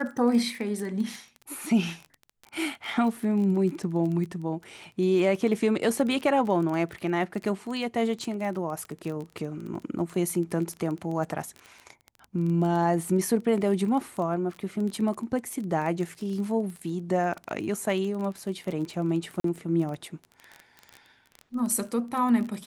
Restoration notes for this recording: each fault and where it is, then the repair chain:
crackle 21 per s -32 dBFS
19.40–19.44 s: dropout 43 ms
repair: de-click; interpolate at 19.40 s, 43 ms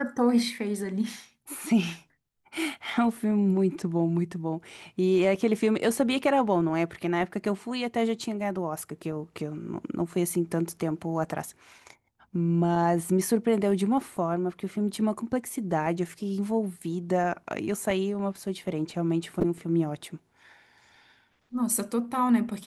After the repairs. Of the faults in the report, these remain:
nothing left

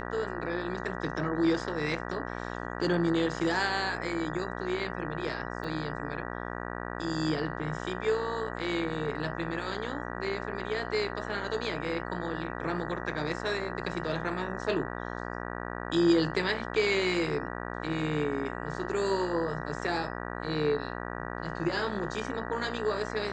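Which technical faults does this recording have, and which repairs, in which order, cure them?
buzz 60 Hz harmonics 32 -37 dBFS
5.64 s: dropout 3.5 ms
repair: de-hum 60 Hz, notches 32; interpolate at 5.64 s, 3.5 ms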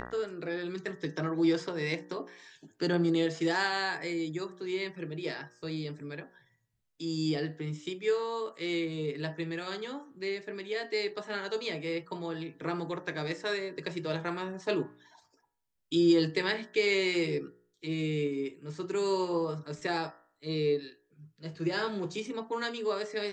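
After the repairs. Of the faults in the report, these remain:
nothing left

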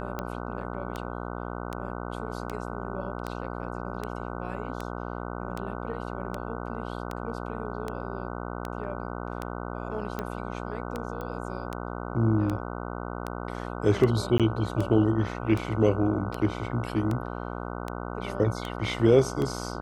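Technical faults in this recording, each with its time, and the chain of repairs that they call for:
buzz 60 Hz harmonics 25 -35 dBFS
tick 78 rpm -18 dBFS
11.21 s: pop -24 dBFS
14.38–14.40 s: dropout 17 ms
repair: de-click; de-hum 60 Hz, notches 25; interpolate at 14.38 s, 17 ms

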